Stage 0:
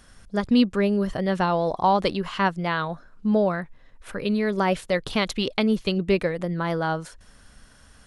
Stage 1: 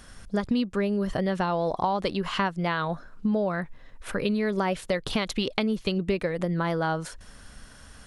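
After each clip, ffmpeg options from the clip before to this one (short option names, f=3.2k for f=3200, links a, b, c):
-af "acompressor=threshold=-27dB:ratio=6,volume=4dB"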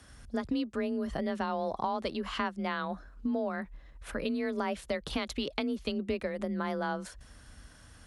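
-af "afreqshift=29,volume=-6.5dB"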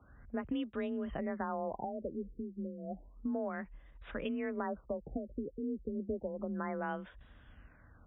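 -af "afftfilt=real='re*lt(b*sr/1024,500*pow(3900/500,0.5+0.5*sin(2*PI*0.31*pts/sr)))':imag='im*lt(b*sr/1024,500*pow(3900/500,0.5+0.5*sin(2*PI*0.31*pts/sr)))':win_size=1024:overlap=0.75,volume=-4.5dB"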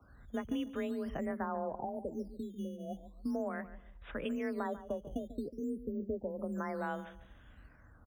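-filter_complex "[0:a]asplit=2[a][b];[b]adelay=144,lowpass=f=1.5k:p=1,volume=-13dB,asplit=2[c][d];[d]adelay=144,lowpass=f=1.5k:p=1,volume=0.29,asplit=2[e][f];[f]adelay=144,lowpass=f=1.5k:p=1,volume=0.29[g];[a][c][e][g]amix=inputs=4:normalize=0,acrossover=split=220|1200[h][i][j];[h]acrusher=samples=8:mix=1:aa=0.000001:lfo=1:lforange=12.8:lforate=0.45[k];[k][i][j]amix=inputs=3:normalize=0"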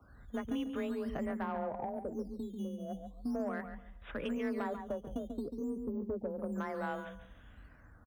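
-filter_complex "[0:a]asoftclip=type=tanh:threshold=-29dB,asplit=2[a][b];[b]adelay=139.9,volume=-10dB,highshelf=f=4k:g=-3.15[c];[a][c]amix=inputs=2:normalize=0,volume=1dB"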